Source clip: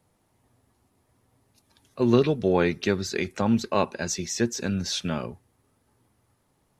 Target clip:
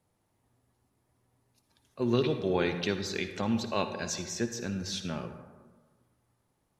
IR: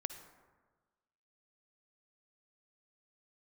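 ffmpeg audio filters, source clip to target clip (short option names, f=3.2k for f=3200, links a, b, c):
-filter_complex "[0:a]asettb=1/sr,asplit=3[a][b][c];[a]atrim=end=2.154[d];[b]atrim=start=2.15:end=4.22,asetpts=PTS-STARTPTS,afade=t=in:d=0.004:c=qsin,afade=t=out:st=2.066:d=0.004:c=qsin,equalizer=f=3.4k:t=o:w=0.9:g=7.5[e];[c]atrim=start=4.216[f];[d][e]acrossfade=d=0.004:c1=hsin:c2=qsin[g];[g][f]acrossfade=d=0.004:c1=qsin:c2=hsin[h];[1:a]atrim=start_sample=2205[i];[h][i]afir=irnorm=-1:irlink=0,volume=-5.5dB"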